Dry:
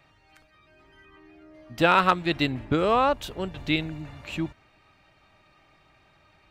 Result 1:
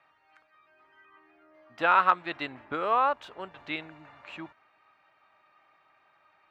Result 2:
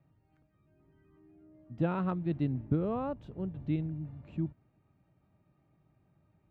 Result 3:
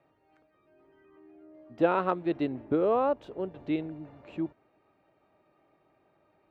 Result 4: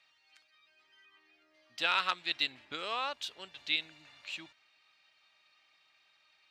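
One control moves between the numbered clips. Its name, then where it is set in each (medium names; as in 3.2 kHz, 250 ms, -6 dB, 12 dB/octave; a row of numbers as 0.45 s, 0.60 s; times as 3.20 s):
band-pass filter, frequency: 1.2 kHz, 150 Hz, 420 Hz, 4.2 kHz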